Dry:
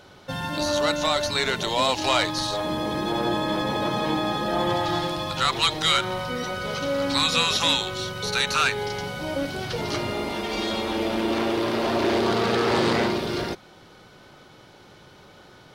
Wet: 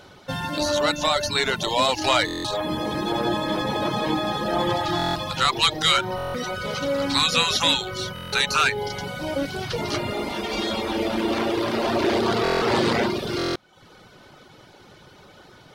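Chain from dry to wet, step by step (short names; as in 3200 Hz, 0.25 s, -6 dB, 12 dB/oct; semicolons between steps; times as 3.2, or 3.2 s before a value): reverb removal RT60 0.67 s; stuck buffer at 2.26/4.97/6.16/8.14/12.43/13.37, samples 1024, times 7; gain +2.5 dB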